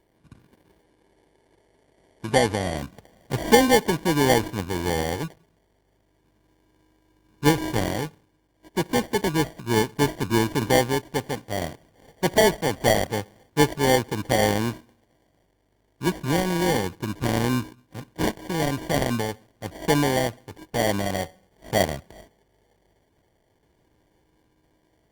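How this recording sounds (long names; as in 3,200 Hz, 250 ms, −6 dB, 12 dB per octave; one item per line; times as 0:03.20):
a buzz of ramps at a fixed pitch in blocks of 8 samples
phaser sweep stages 12, 0.1 Hz, lowest notch 770–1,800 Hz
aliases and images of a low sample rate 1,300 Hz, jitter 0%
Opus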